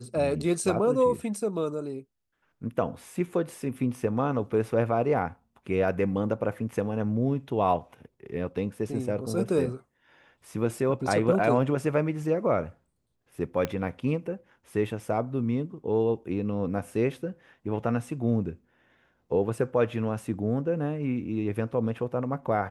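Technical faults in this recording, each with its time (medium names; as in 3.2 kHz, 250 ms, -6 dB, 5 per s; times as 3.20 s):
13.65 s: pop -14 dBFS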